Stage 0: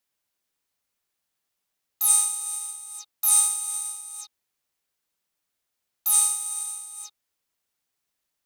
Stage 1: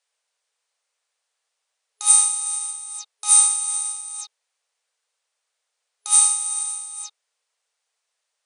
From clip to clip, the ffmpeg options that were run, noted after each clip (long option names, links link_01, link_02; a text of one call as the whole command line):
ffmpeg -i in.wav -af "afftfilt=real='re*between(b*sr/4096,430,9900)':imag='im*between(b*sr/4096,430,9900)':win_size=4096:overlap=0.75,volume=5.5dB" out.wav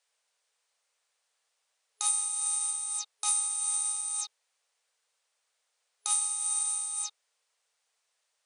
ffmpeg -i in.wav -af "acompressor=threshold=-26dB:ratio=10" out.wav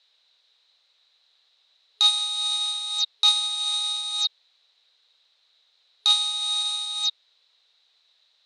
ffmpeg -i in.wav -af "lowpass=frequency=3900:width_type=q:width=11,volume=5.5dB" out.wav